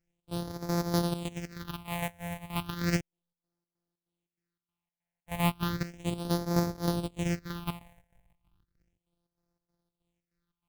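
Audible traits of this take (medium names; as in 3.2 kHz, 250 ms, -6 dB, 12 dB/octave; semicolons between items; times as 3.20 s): a buzz of ramps at a fixed pitch in blocks of 256 samples; phasing stages 6, 0.34 Hz, lowest notch 330–2800 Hz; chopped level 3.2 Hz, depth 65%, duty 65%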